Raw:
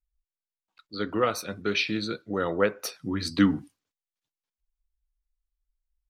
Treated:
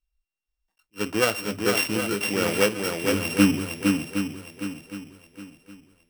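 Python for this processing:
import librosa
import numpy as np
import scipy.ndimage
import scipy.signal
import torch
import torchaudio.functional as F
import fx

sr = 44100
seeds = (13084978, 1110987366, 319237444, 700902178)

y = np.r_[np.sort(x[:len(x) // 16 * 16].reshape(-1, 16), axis=1).ravel(), x[len(x) // 16 * 16:]]
y = fx.echo_swing(y, sr, ms=764, ratio=1.5, feedback_pct=32, wet_db=-4)
y = fx.attack_slew(y, sr, db_per_s=460.0)
y = F.gain(torch.from_numpy(y), 2.5).numpy()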